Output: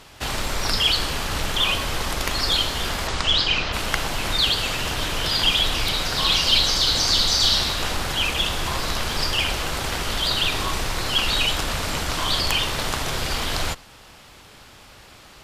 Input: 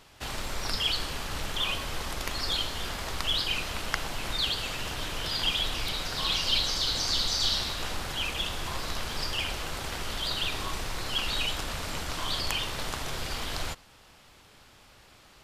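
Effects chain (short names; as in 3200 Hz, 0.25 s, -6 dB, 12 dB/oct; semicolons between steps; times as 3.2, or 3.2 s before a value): added harmonics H 5 -16 dB, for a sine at -6.5 dBFS; 3.07–3.72 LPF 9500 Hz -> 5000 Hz 24 dB/oct; gain +4 dB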